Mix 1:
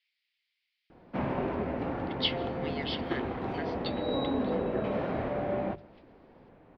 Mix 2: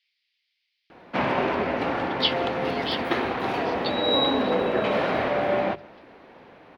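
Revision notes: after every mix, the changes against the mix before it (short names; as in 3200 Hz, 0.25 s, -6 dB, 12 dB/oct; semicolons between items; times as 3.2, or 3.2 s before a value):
background +11.0 dB; master: add tilt +3.5 dB/oct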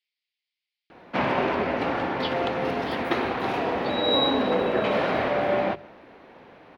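speech -11.5 dB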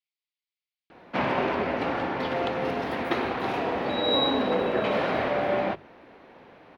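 speech -7.5 dB; reverb: off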